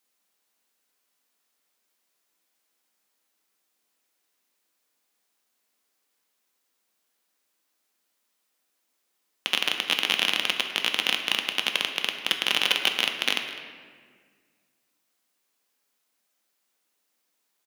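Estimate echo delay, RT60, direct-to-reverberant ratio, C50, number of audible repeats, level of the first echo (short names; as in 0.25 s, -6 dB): 0.204 s, 1.7 s, 4.0 dB, 6.5 dB, 1, -17.5 dB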